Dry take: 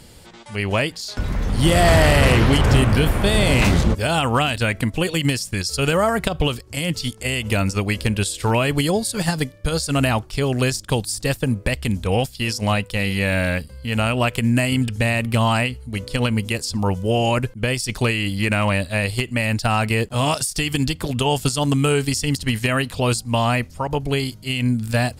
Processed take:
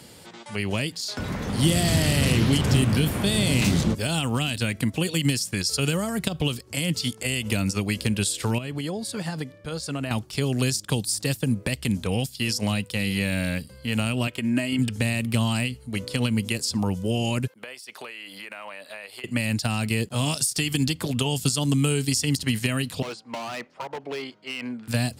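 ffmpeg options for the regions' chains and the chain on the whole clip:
ffmpeg -i in.wav -filter_complex "[0:a]asettb=1/sr,asplit=3[link_01][link_02][link_03];[link_01]atrim=end=8.584[link_04];[link_02]atrim=start=8.58:end=10.11,asetpts=PTS-STARTPTS,afade=type=in:duration=0.004:curve=qsin,afade=type=out:start_time=1.526:duration=0.004:curve=qsin,aemphasis=mode=reproduction:type=cd,acompressor=threshold=-28dB:ratio=2.5:attack=3.2:release=140:knee=1:detection=peak[link_05];[link_03]atrim=start=10.106[link_06];[link_04][link_05]acrossfade=duration=0.004:curve1=hsin:curve2=qsin[link_07];[link_07][link_06]acrossfade=duration=0.004:curve1=qsin:curve2=hsin,asettb=1/sr,asplit=3[link_08][link_09][link_10];[link_08]atrim=end=14.274[link_11];[link_09]atrim=start=14.27:end=14.79,asetpts=PTS-STARTPTS,afade=type=in:duration=0.004:curve=qsin,afade=type=out:start_time=0.516:duration=0.004:curve=qsin,bass=frequency=250:gain=-7,treble=frequency=4000:gain=-11,aecho=1:1:3.2:0.48,atrim=end_sample=22932[link_12];[link_10]atrim=start=14.786[link_13];[link_11][link_12]acrossfade=duration=0.004:curve1=hsin:curve2=qsin[link_14];[link_14][link_13]acrossfade=duration=0.004:curve1=qsin:curve2=hsin,asettb=1/sr,asplit=3[link_15][link_16][link_17];[link_15]atrim=end=17.474[link_18];[link_16]atrim=start=17.47:end=19.24,asetpts=PTS-STARTPTS,afade=type=in:duration=0.004:curve=qsin,afade=type=out:start_time=1.766:duration=0.004:curve=qsin,highpass=570,acompressor=threshold=-35dB:ratio=5:attack=3.2:release=140:knee=1:detection=peak,equalizer=frequency=7100:width=0.94:gain=-8[link_19];[link_17]atrim=start=19.236[link_20];[link_18][link_19]acrossfade=duration=0.004:curve1=hsin:curve2=qsin[link_21];[link_21][link_20]acrossfade=duration=0.004:curve1=qsin:curve2=hsin,asettb=1/sr,asplit=3[link_22][link_23][link_24];[link_22]atrim=end=23.024[link_25];[link_23]atrim=start=23.02:end=24.88,asetpts=PTS-STARTPTS,afade=type=in:duration=0.004:curve=qsin,afade=type=out:start_time=1.856:duration=0.004:curve=qsin,highpass=450,lowpass=2200,asoftclip=type=hard:threshold=-25dB[link_26];[link_24]atrim=start=24.876[link_27];[link_25][link_26]acrossfade=duration=0.004:curve1=hsin:curve2=qsin[link_28];[link_28][link_27]acrossfade=duration=0.004:curve1=qsin:curve2=hsin,highpass=130,acrossover=split=300|3000[link_29][link_30][link_31];[link_30]acompressor=threshold=-31dB:ratio=10[link_32];[link_29][link_32][link_31]amix=inputs=3:normalize=0" out.wav

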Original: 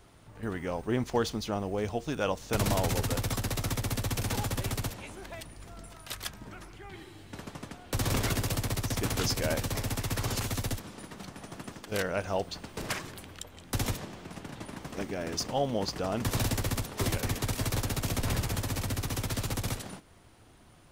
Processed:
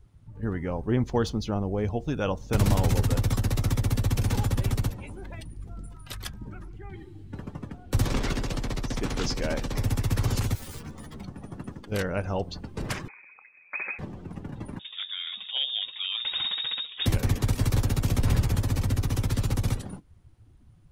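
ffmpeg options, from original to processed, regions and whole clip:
ffmpeg -i in.wav -filter_complex "[0:a]asettb=1/sr,asplit=3[link_01][link_02][link_03];[link_01]atrim=end=8.064[link_04];[link_02]atrim=start=8.06:end=9.78,asetpts=PTS-STARTPTS,afade=type=in:duration=0.004:curve=qsin,afade=type=out:start_time=1.716:duration=0.004:curve=qsin,acrossover=split=7300[link_05][link_06];[link_06]acompressor=threshold=-45dB:ratio=4:attack=1:release=60[link_07];[link_05][link_07]amix=inputs=2:normalize=0,equalizer=frequency=96:width=1.4:gain=-13.5[link_08];[link_03]atrim=start=9.776[link_09];[link_04][link_08]acrossfade=duration=0.004:curve1=hsin:curve2=qsin[link_10];[link_10][link_09]acrossfade=duration=0.004:curve1=qsin:curve2=hsin,asettb=1/sr,asplit=3[link_11][link_12][link_13];[link_11]atrim=end=10.554[link_14];[link_12]atrim=start=10.55:end=11.21,asetpts=PTS-STARTPTS,afade=type=in:duration=0.004:curve=qsin,afade=type=out:start_time=0.656:duration=0.004:curve=qsin,aeval=exprs='(mod(70.8*val(0)+1,2)-1)/70.8':channel_layout=same,asplit=2[link_15][link_16];[link_16]adelay=13,volume=-3.5dB[link_17];[link_15][link_17]amix=inputs=2:normalize=0,atrim=end_sample=29106[link_18];[link_13]atrim=start=11.206[link_19];[link_14][link_18]acrossfade=duration=0.004:curve1=hsin:curve2=qsin[link_20];[link_20][link_19]acrossfade=duration=0.004:curve1=qsin:curve2=hsin,asettb=1/sr,asplit=3[link_21][link_22][link_23];[link_21]atrim=end=13.084[link_24];[link_22]atrim=start=13.08:end=13.99,asetpts=PTS-STARTPTS,afade=type=in:duration=0.004:curve=qsin,afade=type=out:start_time=0.906:duration=0.004:curve=qsin,lowshelf=frequency=330:gain=-3.5,lowpass=frequency=2200:width_type=q:width=0.5098,lowpass=frequency=2200:width_type=q:width=0.6013,lowpass=frequency=2200:width_type=q:width=0.9,lowpass=frequency=2200:width_type=q:width=2.563,afreqshift=-2600,highpass=frequency=260:poles=1[link_25];[link_23]atrim=start=13.986[link_26];[link_24][link_25]acrossfade=duration=0.004:curve1=hsin:curve2=qsin[link_27];[link_27][link_26]acrossfade=duration=0.004:curve1=qsin:curve2=hsin,asettb=1/sr,asplit=3[link_28][link_29][link_30];[link_28]atrim=end=14.794[link_31];[link_29]atrim=start=14.79:end=17.06,asetpts=PTS-STARTPTS,afade=type=in:duration=0.004:curve=qsin,afade=type=out:start_time=2.266:duration=0.004:curve=qsin,aeval=exprs='clip(val(0),-1,0.0668)':channel_layout=same,lowpass=frequency=3200:width_type=q:width=0.5098,lowpass=frequency=3200:width_type=q:width=0.6013,lowpass=frequency=3200:width_type=q:width=0.9,lowpass=frequency=3200:width_type=q:width=2.563,afreqshift=-3800[link_32];[link_30]atrim=start=17.056[link_33];[link_31][link_32]acrossfade=duration=0.004:curve1=hsin:curve2=qsin[link_34];[link_34][link_33]acrossfade=duration=0.004:curve1=qsin:curve2=hsin,bandreject=frequency=660:width=14,afftdn=noise_reduction=14:noise_floor=-46,lowshelf=frequency=230:gain=10" out.wav

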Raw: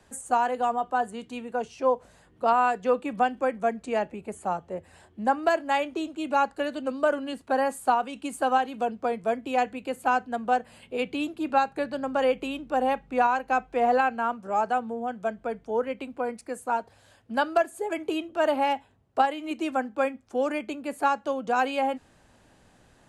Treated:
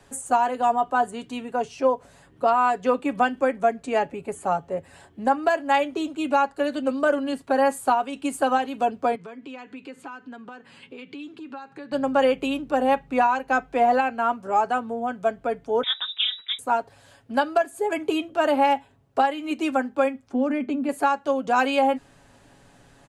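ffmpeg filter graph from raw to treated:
ffmpeg -i in.wav -filter_complex "[0:a]asettb=1/sr,asplit=3[link_01][link_02][link_03];[link_01]atrim=end=9.154[link_04];[link_02]atrim=start=9.15:end=11.92,asetpts=PTS-STARTPTS,afade=type=in:duration=0.004:curve=qsin,afade=type=out:start_time=2.766:duration=0.004:curve=qsin,equalizer=frequency=650:width_type=o:width=0.46:gain=-14,acompressor=threshold=-40dB:ratio=8:attack=3.2:release=140:knee=1:detection=peak,highpass=170,lowpass=5300[link_05];[link_03]atrim=start=11.916[link_06];[link_04][link_05]acrossfade=duration=0.004:curve1=hsin:curve2=qsin[link_07];[link_07][link_06]acrossfade=duration=0.004:curve1=qsin:curve2=hsin,asettb=1/sr,asplit=3[link_08][link_09][link_10];[link_08]atrim=end=15.834[link_11];[link_09]atrim=start=15.83:end=16.59,asetpts=PTS-STARTPTS,afade=type=in:duration=0.004:curve=qsin,afade=type=out:start_time=0.756:duration=0.004:curve=qsin,acontrast=25,tremolo=f=210:d=0.889,lowpass=frequency=3300:width_type=q:width=0.5098,lowpass=frequency=3300:width_type=q:width=0.6013,lowpass=frequency=3300:width_type=q:width=0.9,lowpass=frequency=3300:width_type=q:width=2.563,afreqshift=-3900[link_12];[link_10]atrim=start=16.586[link_13];[link_11][link_12]acrossfade=duration=0.004:curve1=hsin:curve2=qsin[link_14];[link_14][link_13]acrossfade=duration=0.004:curve1=qsin:curve2=hsin,asettb=1/sr,asplit=3[link_15][link_16][link_17];[link_15]atrim=end=20.294[link_18];[link_16]atrim=start=20.29:end=20.89,asetpts=PTS-STARTPTS,afade=type=in:duration=0.004:curve=qsin,afade=type=out:start_time=0.596:duration=0.004:curve=qsin,lowpass=frequency=2100:poles=1,equalizer=frequency=250:width_type=o:width=0.28:gain=13.5,acompressor=threshold=-29dB:ratio=2:attack=3.2:release=140:knee=1:detection=peak[link_19];[link_17]atrim=start=20.886[link_20];[link_18][link_19]acrossfade=duration=0.004:curve1=hsin:curve2=qsin[link_21];[link_21][link_20]acrossfade=duration=0.004:curve1=qsin:curve2=hsin,aecho=1:1:7.2:0.46,alimiter=limit=-14.5dB:level=0:latency=1:release=344,volume=4dB" out.wav

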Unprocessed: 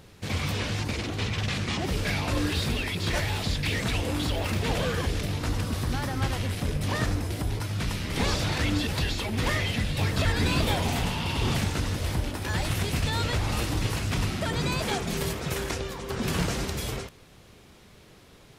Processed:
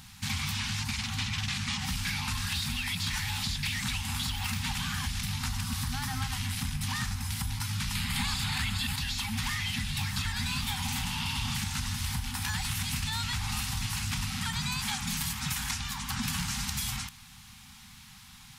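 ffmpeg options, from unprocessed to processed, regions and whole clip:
ffmpeg -i in.wav -filter_complex "[0:a]asettb=1/sr,asplit=3[link_01][link_02][link_03];[link_01]atrim=end=7.954[link_04];[link_02]atrim=start=7.95:end=8.96,asetpts=PTS-STARTPTS,afade=type=in:duration=0.004:curve=qsin,afade=type=out:start_time=1.006:duration=0.004:curve=qsin,equalizer=frequency=5800:width=7:gain=-14,acontrast=89[link_05];[link_03]atrim=start=8.956[link_06];[link_04][link_05]acrossfade=duration=0.004:curve1=hsin:curve2=qsin[link_07];[link_07][link_06]acrossfade=duration=0.004:curve1=qsin:curve2=hsin,afftfilt=real='re*(1-between(b*sr/4096,260,750))':imag='im*(1-between(b*sr/4096,260,750))':win_size=4096:overlap=0.75,highshelf=frequency=2800:gain=9.5,acompressor=threshold=-29dB:ratio=6" out.wav

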